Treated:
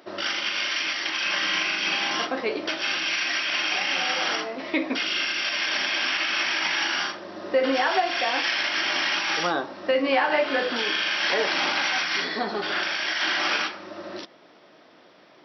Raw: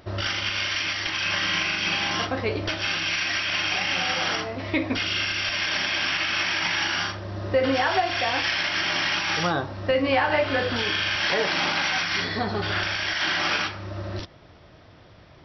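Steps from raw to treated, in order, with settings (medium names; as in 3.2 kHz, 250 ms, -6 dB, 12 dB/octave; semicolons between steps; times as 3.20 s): high-pass 230 Hz 24 dB/octave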